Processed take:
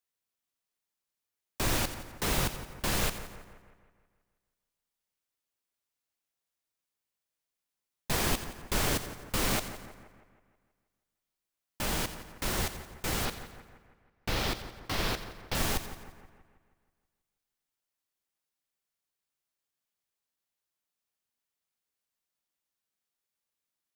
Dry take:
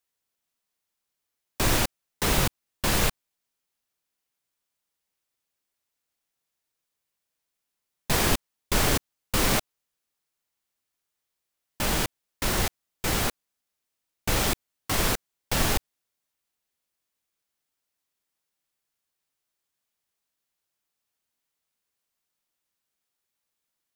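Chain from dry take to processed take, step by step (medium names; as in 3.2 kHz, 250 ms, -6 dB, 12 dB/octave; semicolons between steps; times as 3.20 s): 13.25–15.55 s: resonant high shelf 5.9 kHz -7 dB, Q 1.5; two-band feedback delay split 2.2 kHz, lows 160 ms, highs 87 ms, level -12 dB; trim -6 dB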